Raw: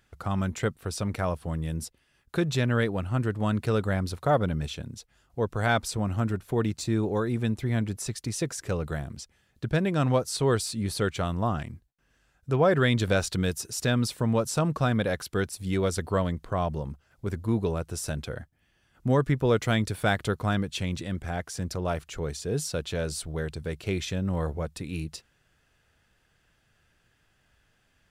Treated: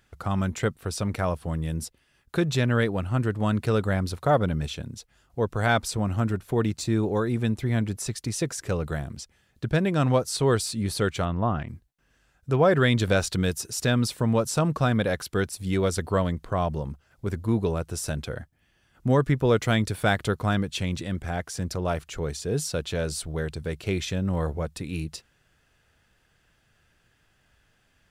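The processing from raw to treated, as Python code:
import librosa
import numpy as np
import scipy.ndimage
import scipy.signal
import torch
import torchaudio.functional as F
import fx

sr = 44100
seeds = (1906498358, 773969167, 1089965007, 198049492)

y = fx.lowpass(x, sr, hz=2800.0, slope=12, at=(11.24, 11.67), fade=0.02)
y = y * librosa.db_to_amplitude(2.0)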